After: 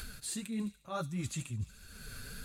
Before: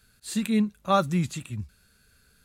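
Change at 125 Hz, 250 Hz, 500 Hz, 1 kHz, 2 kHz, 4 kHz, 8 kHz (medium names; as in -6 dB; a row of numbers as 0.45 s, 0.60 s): -8.5 dB, -12.5 dB, -15.5 dB, -17.0 dB, -8.5 dB, -8.5 dB, -2.0 dB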